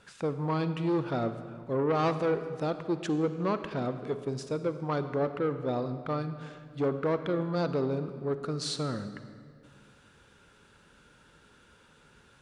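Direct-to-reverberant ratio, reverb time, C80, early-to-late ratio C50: 10.0 dB, 2.2 s, 11.5 dB, 10.5 dB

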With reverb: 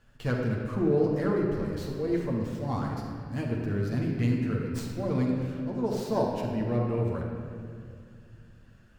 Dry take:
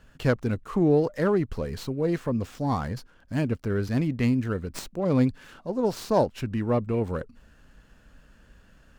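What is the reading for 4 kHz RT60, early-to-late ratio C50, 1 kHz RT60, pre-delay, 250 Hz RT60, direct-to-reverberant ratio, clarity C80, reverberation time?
1.7 s, 1.0 dB, 2.1 s, 9 ms, 3.1 s, -2.0 dB, 3.0 dB, 2.2 s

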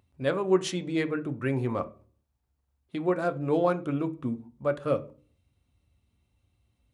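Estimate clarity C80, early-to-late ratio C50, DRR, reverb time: 23.5 dB, 18.5 dB, 8.5 dB, 0.40 s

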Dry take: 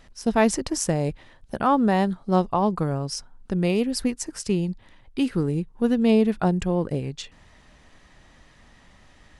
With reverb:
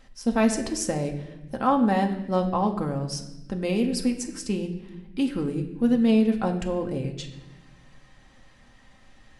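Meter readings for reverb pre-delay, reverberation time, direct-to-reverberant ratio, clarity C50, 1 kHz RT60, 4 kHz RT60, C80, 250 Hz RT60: 4 ms, 1.0 s, 2.5 dB, 10.0 dB, 0.85 s, 0.90 s, 11.5 dB, 1.6 s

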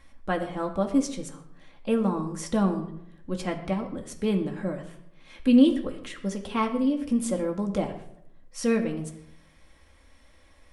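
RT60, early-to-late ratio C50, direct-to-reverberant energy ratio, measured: 0.75 s, 10.5 dB, 3.0 dB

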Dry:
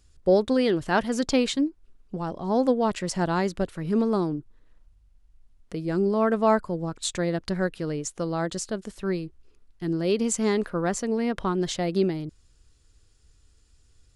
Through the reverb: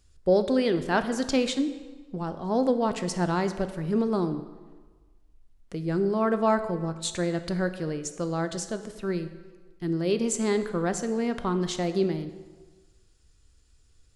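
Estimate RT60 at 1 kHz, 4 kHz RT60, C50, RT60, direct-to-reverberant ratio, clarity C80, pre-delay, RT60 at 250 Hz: 1.4 s, 1.1 s, 11.5 dB, 1.4 s, 9.0 dB, 13.0 dB, 4 ms, 1.3 s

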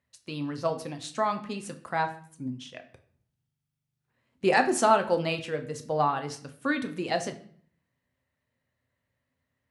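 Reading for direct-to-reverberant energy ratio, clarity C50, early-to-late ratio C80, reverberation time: 6.5 dB, 13.0 dB, 16.5 dB, 0.55 s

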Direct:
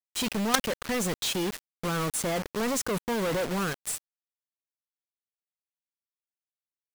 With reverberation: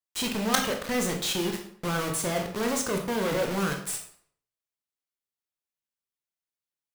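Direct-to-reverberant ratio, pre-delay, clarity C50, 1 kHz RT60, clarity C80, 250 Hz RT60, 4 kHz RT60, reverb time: 2.5 dB, 18 ms, 7.0 dB, 0.55 s, 11.0 dB, 0.65 s, 0.45 s, 0.60 s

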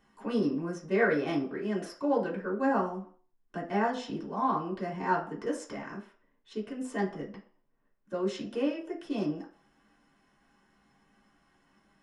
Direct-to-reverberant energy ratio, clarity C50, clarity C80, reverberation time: -4.0 dB, 10.0 dB, 14.0 dB, 0.50 s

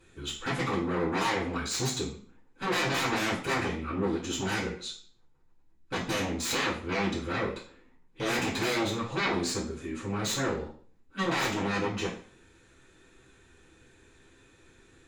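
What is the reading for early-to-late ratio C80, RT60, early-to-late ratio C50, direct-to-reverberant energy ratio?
11.5 dB, 0.50 s, 7.0 dB, -11.0 dB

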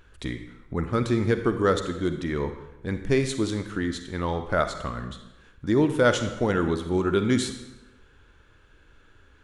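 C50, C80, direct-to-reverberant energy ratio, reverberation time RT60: 9.0 dB, 11.0 dB, 8.0 dB, 1.0 s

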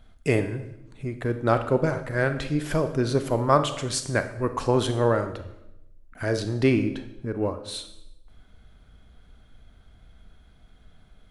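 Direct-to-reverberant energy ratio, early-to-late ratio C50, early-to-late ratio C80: 9.0 dB, 10.5 dB, 13.5 dB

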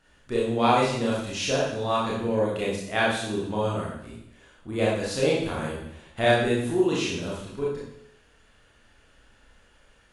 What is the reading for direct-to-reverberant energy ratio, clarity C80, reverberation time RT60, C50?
-6.0 dB, 5.0 dB, 0.80 s, 0.5 dB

